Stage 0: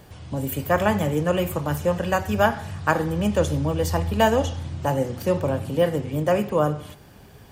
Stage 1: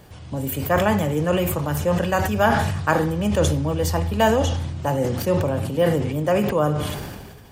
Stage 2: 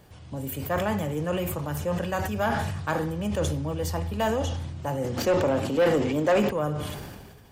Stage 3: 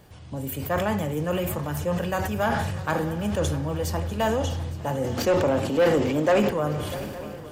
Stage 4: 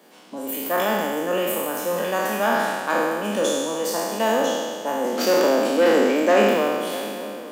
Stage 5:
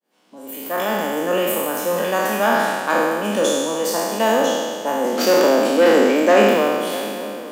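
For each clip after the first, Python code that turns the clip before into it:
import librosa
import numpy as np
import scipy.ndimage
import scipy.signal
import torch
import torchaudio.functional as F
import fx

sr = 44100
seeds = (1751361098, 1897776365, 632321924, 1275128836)

y1 = fx.sustainer(x, sr, db_per_s=34.0)
y2 = fx.spec_box(y1, sr, start_s=5.17, length_s=1.31, low_hz=210.0, high_hz=7900.0, gain_db=9)
y2 = 10.0 ** (-9.5 / 20.0) * np.tanh(y2 / 10.0 ** (-9.5 / 20.0))
y2 = F.gain(torch.from_numpy(y2), -6.5).numpy()
y3 = fx.echo_swing(y2, sr, ms=862, ratio=3, feedback_pct=45, wet_db=-16.0)
y3 = F.gain(torch.from_numpy(y3), 1.5).numpy()
y4 = fx.spec_trails(y3, sr, decay_s=1.77)
y4 = scipy.signal.sosfilt(scipy.signal.butter(8, 210.0, 'highpass', fs=sr, output='sos'), y4)
y4 = F.gain(torch.from_numpy(y4), 1.0).numpy()
y5 = fx.fade_in_head(y4, sr, length_s=1.27)
y5 = F.gain(torch.from_numpy(y5), 3.5).numpy()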